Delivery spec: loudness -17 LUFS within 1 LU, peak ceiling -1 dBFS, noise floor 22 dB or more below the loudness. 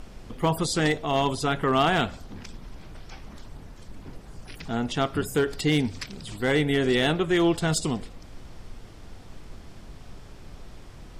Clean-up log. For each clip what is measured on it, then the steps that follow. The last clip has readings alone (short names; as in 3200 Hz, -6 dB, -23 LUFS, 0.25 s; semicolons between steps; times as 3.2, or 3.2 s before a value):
clipped 0.4%; flat tops at -15.0 dBFS; noise floor -46 dBFS; noise floor target -47 dBFS; loudness -25.0 LUFS; peak -15.0 dBFS; loudness target -17.0 LUFS
-> clip repair -15 dBFS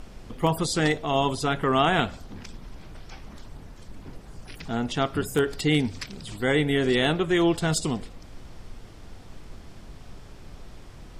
clipped 0.0%; noise floor -46 dBFS; noise floor target -47 dBFS
-> noise print and reduce 6 dB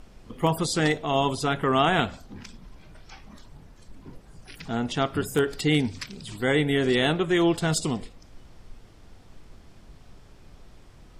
noise floor -51 dBFS; loudness -24.5 LUFS; peak -6.0 dBFS; loudness target -17.0 LUFS
-> gain +7.5 dB; limiter -1 dBFS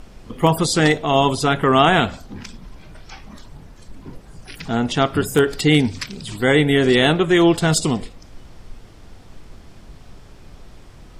loudness -17.5 LUFS; peak -1.0 dBFS; noise floor -44 dBFS